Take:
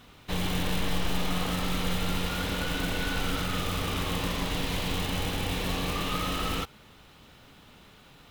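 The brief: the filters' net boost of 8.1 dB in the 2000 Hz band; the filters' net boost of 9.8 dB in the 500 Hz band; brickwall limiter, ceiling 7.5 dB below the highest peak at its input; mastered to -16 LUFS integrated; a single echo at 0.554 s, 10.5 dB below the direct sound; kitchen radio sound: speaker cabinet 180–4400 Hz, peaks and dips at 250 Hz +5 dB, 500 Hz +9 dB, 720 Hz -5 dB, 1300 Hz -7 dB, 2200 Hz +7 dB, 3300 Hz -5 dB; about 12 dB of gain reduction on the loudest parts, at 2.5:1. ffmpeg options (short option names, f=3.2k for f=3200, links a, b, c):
-af "equalizer=f=500:t=o:g=4.5,equalizer=f=2k:t=o:g=7,acompressor=threshold=-41dB:ratio=2.5,alimiter=level_in=9dB:limit=-24dB:level=0:latency=1,volume=-9dB,highpass=180,equalizer=f=250:t=q:w=4:g=5,equalizer=f=500:t=q:w=4:g=9,equalizer=f=720:t=q:w=4:g=-5,equalizer=f=1.3k:t=q:w=4:g=-7,equalizer=f=2.2k:t=q:w=4:g=7,equalizer=f=3.3k:t=q:w=4:g=-5,lowpass=f=4.4k:w=0.5412,lowpass=f=4.4k:w=1.3066,aecho=1:1:554:0.299,volume=25.5dB"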